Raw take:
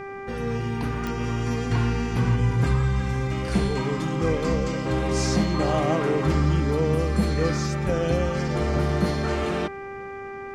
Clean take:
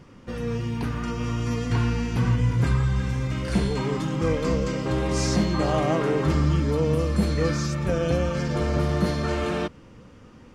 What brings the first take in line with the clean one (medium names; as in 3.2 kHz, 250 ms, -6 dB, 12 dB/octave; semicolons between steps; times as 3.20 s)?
de-click; de-hum 394.3 Hz, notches 6